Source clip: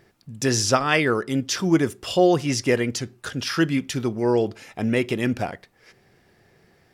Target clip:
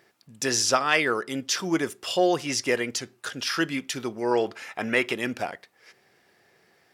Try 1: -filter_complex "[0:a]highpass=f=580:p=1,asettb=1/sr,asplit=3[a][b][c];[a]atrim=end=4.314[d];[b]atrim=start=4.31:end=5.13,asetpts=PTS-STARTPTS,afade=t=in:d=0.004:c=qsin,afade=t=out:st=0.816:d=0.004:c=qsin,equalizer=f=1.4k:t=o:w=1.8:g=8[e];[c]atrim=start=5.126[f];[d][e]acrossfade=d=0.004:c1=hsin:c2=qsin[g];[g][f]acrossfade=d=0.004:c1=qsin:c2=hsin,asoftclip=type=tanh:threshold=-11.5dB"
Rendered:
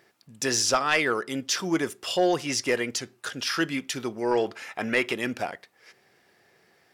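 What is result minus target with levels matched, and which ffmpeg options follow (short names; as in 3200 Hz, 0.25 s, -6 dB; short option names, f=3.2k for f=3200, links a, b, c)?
soft clip: distortion +12 dB
-filter_complex "[0:a]highpass=f=580:p=1,asettb=1/sr,asplit=3[a][b][c];[a]atrim=end=4.314[d];[b]atrim=start=4.31:end=5.13,asetpts=PTS-STARTPTS,afade=t=in:d=0.004:c=qsin,afade=t=out:st=0.816:d=0.004:c=qsin,equalizer=f=1.4k:t=o:w=1.8:g=8[e];[c]atrim=start=5.126[f];[d][e]acrossfade=d=0.004:c1=hsin:c2=qsin[g];[g][f]acrossfade=d=0.004:c1=qsin:c2=hsin,asoftclip=type=tanh:threshold=-4dB"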